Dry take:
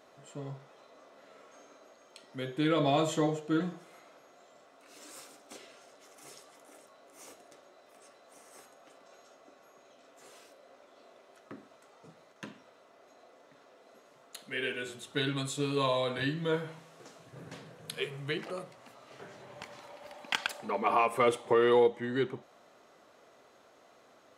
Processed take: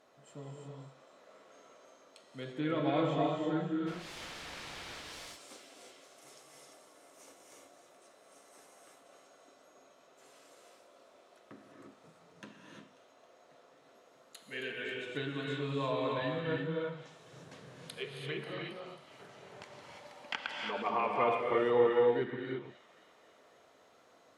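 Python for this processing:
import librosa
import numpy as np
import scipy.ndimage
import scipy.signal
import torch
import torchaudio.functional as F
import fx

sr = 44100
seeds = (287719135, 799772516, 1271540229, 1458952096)

p1 = fx.quant_dither(x, sr, seeds[0], bits=6, dither='triangular', at=(3.86, 5.01), fade=0.02)
p2 = fx.steep_lowpass(p1, sr, hz=5300.0, slope=36, at=(18.21, 18.82))
p3 = fx.rev_gated(p2, sr, seeds[1], gate_ms=370, shape='rising', drr_db=-0.5)
p4 = fx.env_lowpass_down(p3, sr, base_hz=2800.0, full_db=-27.5)
p5 = p4 + fx.echo_wet_highpass(p4, sr, ms=270, feedback_pct=65, hz=2800.0, wet_db=-12.5, dry=0)
y = p5 * librosa.db_to_amplitude(-6.0)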